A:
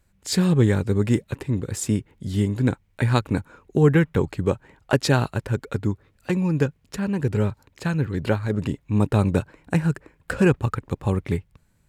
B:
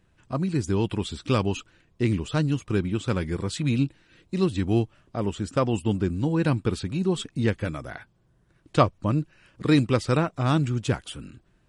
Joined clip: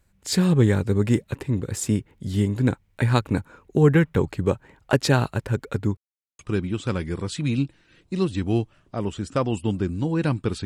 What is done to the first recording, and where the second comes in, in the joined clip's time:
A
5.97–6.39 s: mute
6.39 s: go over to B from 2.60 s

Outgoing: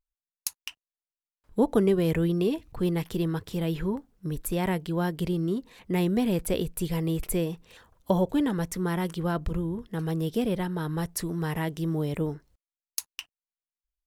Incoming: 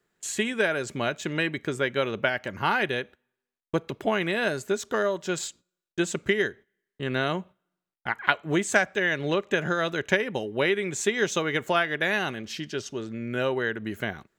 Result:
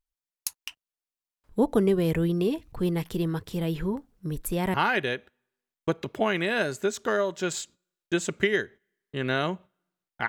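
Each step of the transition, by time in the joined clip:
outgoing
4.74 s: go over to incoming from 2.60 s

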